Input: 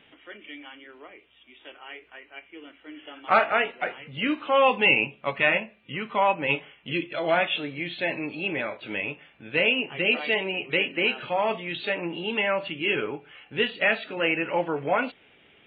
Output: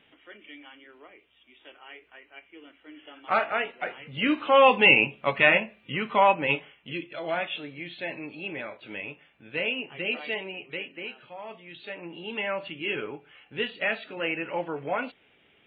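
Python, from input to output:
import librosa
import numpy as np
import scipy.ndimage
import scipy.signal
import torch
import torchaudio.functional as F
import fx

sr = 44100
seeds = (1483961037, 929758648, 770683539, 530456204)

y = fx.gain(x, sr, db=fx.line((3.73, -4.5), (4.38, 2.5), (6.26, 2.5), (7.0, -6.5), (10.32, -6.5), (11.36, -16.5), (12.47, -5.0)))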